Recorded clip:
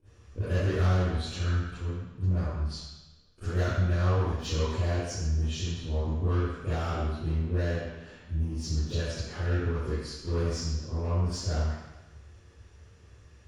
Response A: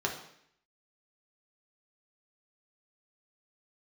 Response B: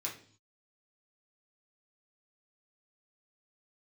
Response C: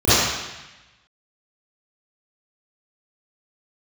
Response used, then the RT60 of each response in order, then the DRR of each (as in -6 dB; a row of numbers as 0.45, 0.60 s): C; 0.70, 0.50, 1.0 s; -1.0, -3.5, -16.5 dB